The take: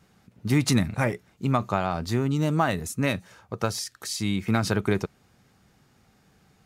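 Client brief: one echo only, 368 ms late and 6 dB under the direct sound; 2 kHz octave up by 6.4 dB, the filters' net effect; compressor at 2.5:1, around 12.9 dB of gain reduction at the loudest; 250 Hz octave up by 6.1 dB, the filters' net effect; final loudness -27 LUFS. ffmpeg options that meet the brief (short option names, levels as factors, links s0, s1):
-af "equalizer=f=250:t=o:g=7.5,equalizer=f=2000:t=o:g=8,acompressor=threshold=0.0251:ratio=2.5,aecho=1:1:368:0.501,volume=1.78"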